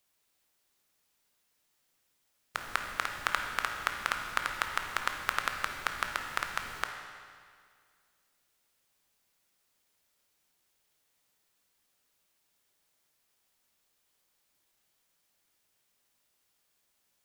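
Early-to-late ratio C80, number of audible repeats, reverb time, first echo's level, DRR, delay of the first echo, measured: 5.5 dB, none, 2.0 s, none, 3.0 dB, none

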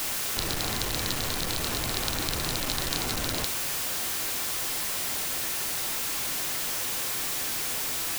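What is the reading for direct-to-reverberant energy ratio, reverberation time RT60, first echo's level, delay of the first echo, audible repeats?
9.5 dB, 0.45 s, none, none, none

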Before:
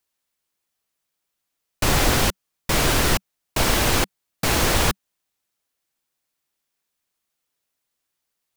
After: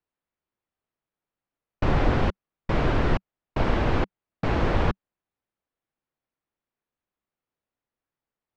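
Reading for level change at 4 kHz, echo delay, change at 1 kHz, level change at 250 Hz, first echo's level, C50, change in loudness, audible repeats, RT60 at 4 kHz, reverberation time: -16.0 dB, none, -4.5 dB, -1.0 dB, none, none, -5.5 dB, none, none, none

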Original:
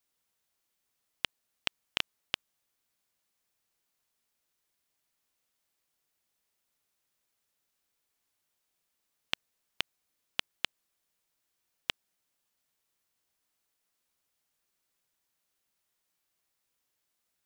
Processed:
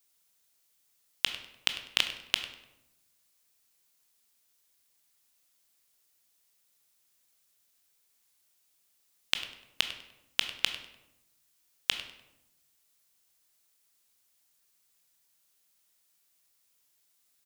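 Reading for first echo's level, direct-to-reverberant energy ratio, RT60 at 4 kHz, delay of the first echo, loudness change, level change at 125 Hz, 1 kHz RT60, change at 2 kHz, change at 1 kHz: -16.0 dB, 7.0 dB, 0.60 s, 99 ms, +5.5 dB, +1.5 dB, 0.85 s, +4.5 dB, +2.0 dB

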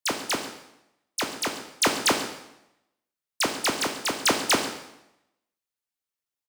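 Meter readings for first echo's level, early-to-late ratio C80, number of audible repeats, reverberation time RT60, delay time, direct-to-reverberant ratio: -16.5 dB, 9.5 dB, 1, 0.85 s, 0.138 s, 3.5 dB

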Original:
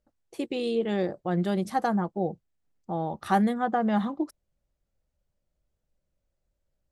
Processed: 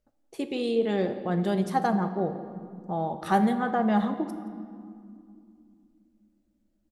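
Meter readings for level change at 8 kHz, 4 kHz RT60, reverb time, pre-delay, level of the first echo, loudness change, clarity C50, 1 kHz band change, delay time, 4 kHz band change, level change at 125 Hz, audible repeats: n/a, 1.4 s, 2.4 s, 5 ms, -20.0 dB, +1.0 dB, 10.0 dB, +1.0 dB, 0.172 s, +0.5 dB, +1.0 dB, 1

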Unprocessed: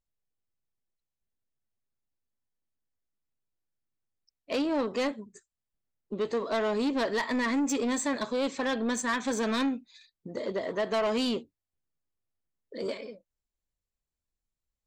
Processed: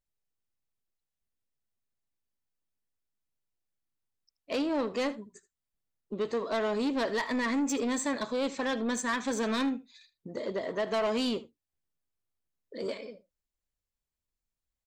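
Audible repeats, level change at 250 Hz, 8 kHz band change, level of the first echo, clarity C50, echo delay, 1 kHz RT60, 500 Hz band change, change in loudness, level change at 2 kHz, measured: 1, -1.5 dB, -1.5 dB, -18.5 dB, none, 78 ms, none, -1.5 dB, -1.5 dB, -1.5 dB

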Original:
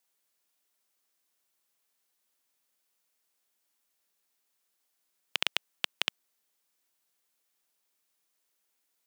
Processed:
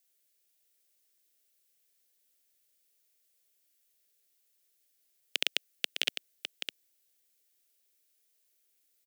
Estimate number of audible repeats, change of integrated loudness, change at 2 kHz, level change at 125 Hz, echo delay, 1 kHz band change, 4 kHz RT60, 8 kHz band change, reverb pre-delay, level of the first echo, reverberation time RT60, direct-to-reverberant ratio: 1, -1.5 dB, -0.5 dB, n/a, 0.607 s, -9.0 dB, none, +2.5 dB, none, -7.5 dB, none, none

